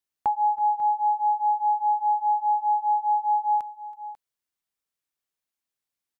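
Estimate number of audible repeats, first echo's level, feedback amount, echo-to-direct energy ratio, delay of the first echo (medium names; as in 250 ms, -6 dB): 2, -19.0 dB, no regular repeats, -13.0 dB, 326 ms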